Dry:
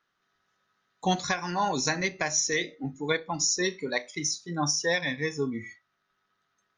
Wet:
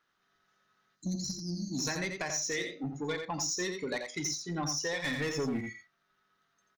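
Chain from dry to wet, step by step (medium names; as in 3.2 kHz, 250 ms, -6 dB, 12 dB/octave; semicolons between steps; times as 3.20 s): 0.96–1.79 s: spectral selection erased 350–4000 Hz; 5.04–5.61 s: waveshaping leveller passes 2; compression 5:1, threshold -29 dBFS, peak gain reduction 7.5 dB; saturation -27 dBFS, distortion -16 dB; delay 86 ms -6.5 dB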